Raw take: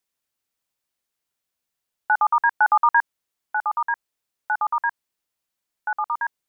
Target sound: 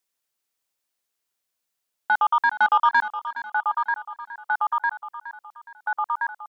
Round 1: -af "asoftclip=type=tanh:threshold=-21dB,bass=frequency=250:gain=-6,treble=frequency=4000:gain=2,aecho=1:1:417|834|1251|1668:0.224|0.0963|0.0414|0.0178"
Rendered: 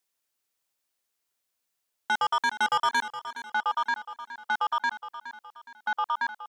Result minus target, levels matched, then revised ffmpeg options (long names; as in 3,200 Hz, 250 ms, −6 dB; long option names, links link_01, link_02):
soft clipping: distortion +13 dB
-af "asoftclip=type=tanh:threshold=-9.5dB,bass=frequency=250:gain=-6,treble=frequency=4000:gain=2,aecho=1:1:417|834|1251|1668:0.224|0.0963|0.0414|0.0178"